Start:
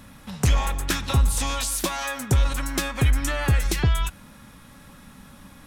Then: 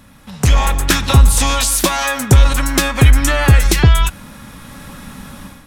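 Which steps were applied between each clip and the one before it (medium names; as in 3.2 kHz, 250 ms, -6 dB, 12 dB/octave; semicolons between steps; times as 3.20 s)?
level rider gain up to 12.5 dB; trim +1 dB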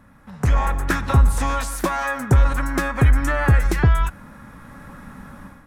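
resonant high shelf 2.3 kHz -10 dB, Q 1.5; trim -6 dB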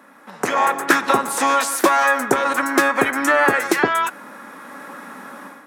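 high-pass 290 Hz 24 dB/octave; trim +8 dB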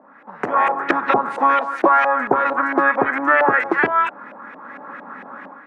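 LFO low-pass saw up 4.4 Hz 650–2600 Hz; trim -2.5 dB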